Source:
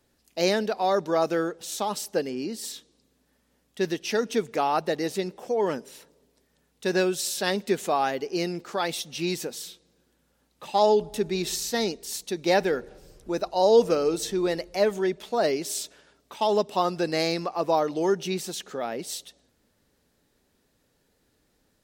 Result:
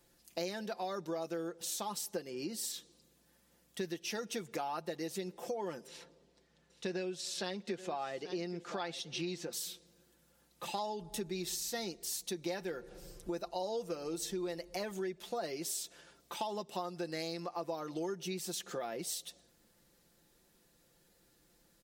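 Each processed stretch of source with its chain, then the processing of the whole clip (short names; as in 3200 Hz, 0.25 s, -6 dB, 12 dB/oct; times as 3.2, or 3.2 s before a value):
5.87–9.53 LPF 4900 Hz + echo 0.827 s -18 dB
whole clip: high shelf 5900 Hz +6.5 dB; comb 5.8 ms, depth 56%; compressor 6:1, threshold -34 dBFS; gain -2.5 dB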